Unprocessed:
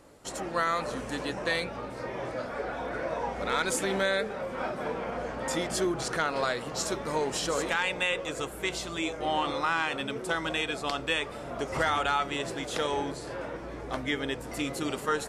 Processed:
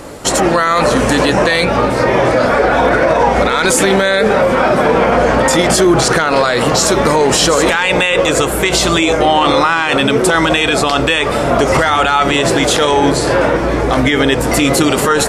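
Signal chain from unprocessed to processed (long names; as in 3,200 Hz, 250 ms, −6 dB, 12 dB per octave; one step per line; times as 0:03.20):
boost into a limiter +26.5 dB
level −1.5 dB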